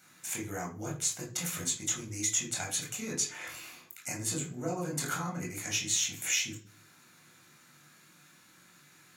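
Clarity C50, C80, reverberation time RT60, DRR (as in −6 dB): 9.0 dB, 14.0 dB, 0.40 s, −3.0 dB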